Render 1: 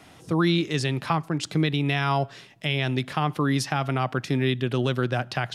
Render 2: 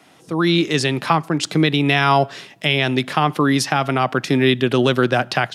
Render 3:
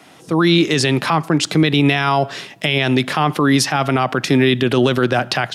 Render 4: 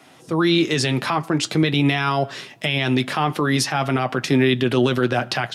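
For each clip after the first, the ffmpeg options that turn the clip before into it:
-af "highpass=180,dynaudnorm=f=320:g=3:m=11.5dB"
-af "alimiter=level_in=10dB:limit=-1dB:release=50:level=0:latency=1,volume=-4.5dB"
-af "flanger=delay=7.7:depth=1.4:regen=-51:speed=0.45:shape=triangular"

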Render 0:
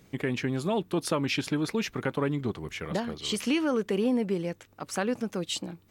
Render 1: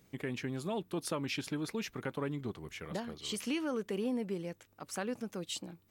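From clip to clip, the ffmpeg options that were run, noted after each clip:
-af "highshelf=f=8.6k:g=6.5,volume=-8.5dB"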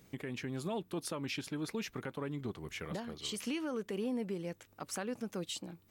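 -af "alimiter=level_in=8.5dB:limit=-24dB:level=0:latency=1:release=402,volume=-8.5dB,volume=3.5dB"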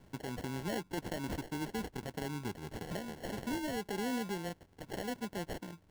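-filter_complex "[0:a]acrossover=split=100|7100[a][b][c];[c]acompressor=mode=upward:threshold=-57dB:ratio=2.5[d];[a][b][d]amix=inputs=3:normalize=0,acrusher=samples=36:mix=1:aa=0.000001"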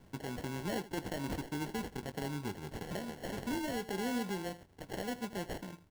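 -af "aecho=1:1:21|80:0.237|0.168,acrusher=bits=5:mode=log:mix=0:aa=0.000001"

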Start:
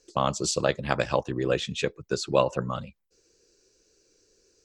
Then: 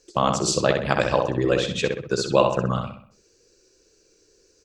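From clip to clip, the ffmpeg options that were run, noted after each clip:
-filter_complex "[0:a]asplit=2[a][b];[b]adelay=64,lowpass=f=3.7k:p=1,volume=-4dB,asplit=2[c][d];[d]adelay=64,lowpass=f=3.7k:p=1,volume=0.45,asplit=2[e][f];[f]adelay=64,lowpass=f=3.7k:p=1,volume=0.45,asplit=2[g][h];[h]adelay=64,lowpass=f=3.7k:p=1,volume=0.45,asplit=2[i][j];[j]adelay=64,lowpass=f=3.7k:p=1,volume=0.45,asplit=2[k][l];[l]adelay=64,lowpass=f=3.7k:p=1,volume=0.45[m];[a][c][e][g][i][k][m]amix=inputs=7:normalize=0,volume=3.5dB"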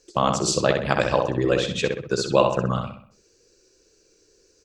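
-af anull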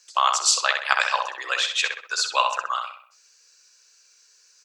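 -af "highpass=f=1k:w=0.5412,highpass=f=1k:w=1.3066,volume=6dB"

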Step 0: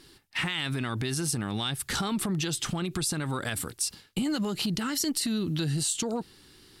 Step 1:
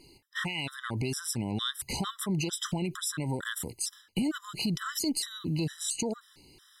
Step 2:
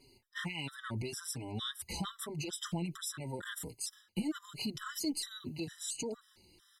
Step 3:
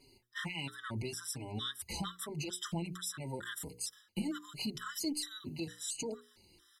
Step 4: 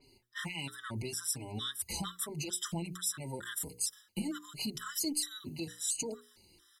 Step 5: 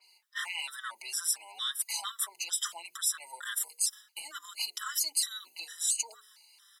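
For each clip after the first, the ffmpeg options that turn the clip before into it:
-af "afftfilt=real='re*gt(sin(2*PI*2.2*pts/sr)*(1-2*mod(floor(b*sr/1024/1000),2)),0)':imag='im*gt(sin(2*PI*2.2*pts/sr)*(1-2*mod(floor(b*sr/1024/1000),2)),0)':win_size=1024:overlap=0.75"
-filter_complex "[0:a]asplit=2[a][b];[b]adelay=4.8,afreqshift=-1.3[c];[a][c]amix=inputs=2:normalize=1,volume=-3.5dB"
-af "bandreject=f=60:t=h:w=6,bandreject=f=120:t=h:w=6,bandreject=f=180:t=h:w=6,bandreject=f=240:t=h:w=6,bandreject=f=300:t=h:w=6,bandreject=f=360:t=h:w=6,bandreject=f=420:t=h:w=6,bandreject=f=480:t=h:w=6"
-af "adynamicequalizer=threshold=0.002:dfrequency=5500:dqfactor=0.7:tfrequency=5500:tqfactor=0.7:attack=5:release=100:ratio=0.375:range=4:mode=boostabove:tftype=highshelf"
-af "highpass=f=880:w=0.5412,highpass=f=880:w=1.3066,volume=5dB"

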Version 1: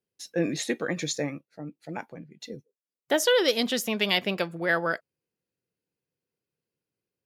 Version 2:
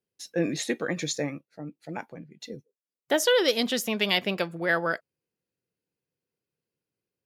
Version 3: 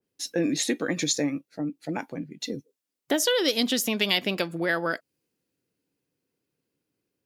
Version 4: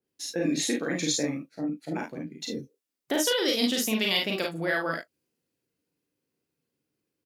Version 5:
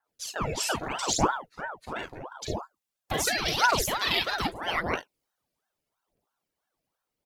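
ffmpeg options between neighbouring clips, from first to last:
-af anull
-af "equalizer=f=280:t=o:w=0.45:g=9,acompressor=threshold=-34dB:ratio=2,adynamicequalizer=threshold=0.00355:dfrequency=2700:dqfactor=0.7:tfrequency=2700:tqfactor=0.7:attack=5:release=100:ratio=0.375:range=3:mode=boostabove:tftype=highshelf,volume=5.5dB"
-af "aecho=1:1:37|50|73:0.631|0.668|0.251,volume=-4dB"
-af "aphaser=in_gain=1:out_gain=1:delay=2.5:decay=0.64:speed=0.81:type=triangular,aeval=exprs='val(0)*sin(2*PI*690*n/s+690*0.8/3*sin(2*PI*3*n/s))':c=same"

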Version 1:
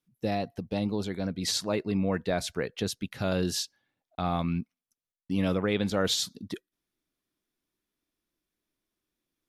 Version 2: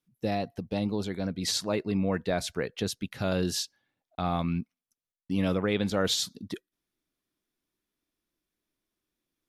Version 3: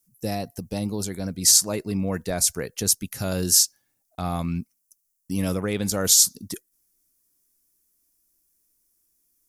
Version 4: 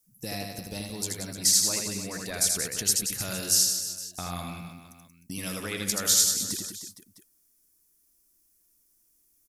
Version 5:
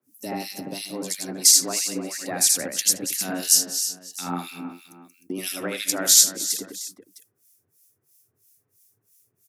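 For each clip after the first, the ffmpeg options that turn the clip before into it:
-af anull
-af "lowshelf=f=88:g=9.5,aexciter=amount=11.6:drive=2.9:freq=5.3k"
-filter_complex "[0:a]acrossover=split=1400|4900[a][b][c];[a]acompressor=threshold=-38dB:ratio=4[d];[b]acompressor=threshold=-27dB:ratio=4[e];[c]acompressor=threshold=-23dB:ratio=4[f];[d][e][f]amix=inputs=3:normalize=0,aecho=1:1:80|180|305|461.2|656.6:0.631|0.398|0.251|0.158|0.1"
-filter_complex "[0:a]afreqshift=89,acrossover=split=1900[a][b];[a]aeval=exprs='val(0)*(1-1/2+1/2*cos(2*PI*3*n/s))':c=same[c];[b]aeval=exprs='val(0)*(1-1/2-1/2*cos(2*PI*3*n/s))':c=same[d];[c][d]amix=inputs=2:normalize=0,volume=8dB"

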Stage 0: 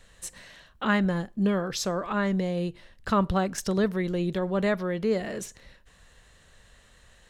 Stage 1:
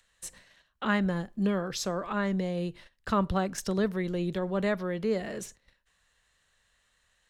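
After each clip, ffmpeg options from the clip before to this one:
-filter_complex "[0:a]acrossover=split=120|830[a][b][c];[c]acompressor=mode=upward:threshold=-41dB:ratio=2.5[d];[a][b][d]amix=inputs=3:normalize=0,agate=range=-17dB:threshold=-45dB:ratio=16:detection=peak,volume=-3dB"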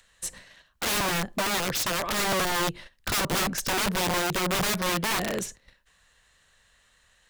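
-af "aeval=exprs='(mod(26.6*val(0)+1,2)-1)/26.6':c=same,volume=7.5dB"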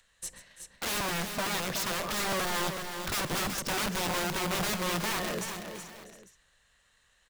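-af "aecho=1:1:134|339|373|643|714|848:0.168|0.141|0.422|0.112|0.119|0.106,volume=-5.5dB"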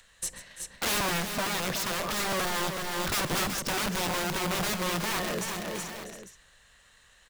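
-af "alimiter=level_in=6dB:limit=-24dB:level=0:latency=1:release=432,volume=-6dB,volume=8dB"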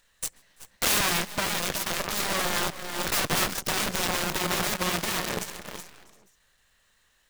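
-af "aeval=exprs='val(0)+0.5*0.00501*sgn(val(0))':c=same,aeval=exprs='0.0841*(cos(1*acos(clip(val(0)/0.0841,-1,1)))-cos(1*PI/2))+0.0299*(cos(3*acos(clip(val(0)/0.0841,-1,1)))-cos(3*PI/2))+0.000596*(cos(4*acos(clip(val(0)/0.0841,-1,1)))-cos(4*PI/2))+0.00299*(cos(6*acos(clip(val(0)/0.0841,-1,1)))-cos(6*PI/2))':c=same,volume=6.5dB"

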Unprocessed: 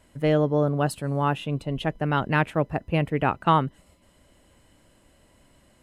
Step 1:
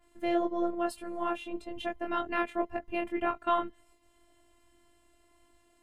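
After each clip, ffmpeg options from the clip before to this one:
-af "flanger=delay=19:depth=5.2:speed=1.8,afftfilt=real='hypot(re,im)*cos(PI*b)':imag='0':win_size=512:overlap=0.75,adynamicequalizer=threshold=0.00355:dfrequency=3200:dqfactor=0.7:tfrequency=3200:tqfactor=0.7:attack=5:release=100:ratio=0.375:range=2:mode=cutabove:tftype=highshelf"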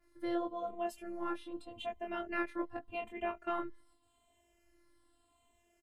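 -filter_complex "[0:a]asplit=2[a][b];[b]adelay=3,afreqshift=-0.84[c];[a][c]amix=inputs=2:normalize=1,volume=-3dB"

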